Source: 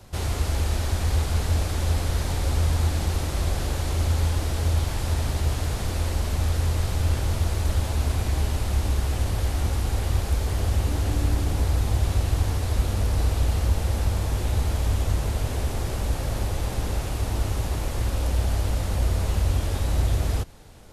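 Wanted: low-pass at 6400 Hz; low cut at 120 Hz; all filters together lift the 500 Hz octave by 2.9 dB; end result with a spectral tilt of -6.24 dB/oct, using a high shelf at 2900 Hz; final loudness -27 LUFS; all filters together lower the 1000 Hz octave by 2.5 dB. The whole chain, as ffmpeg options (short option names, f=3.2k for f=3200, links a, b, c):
-af "highpass=120,lowpass=6.4k,equalizer=f=500:t=o:g=5,equalizer=f=1k:t=o:g=-4.5,highshelf=f=2.9k:g=-8,volume=4.5dB"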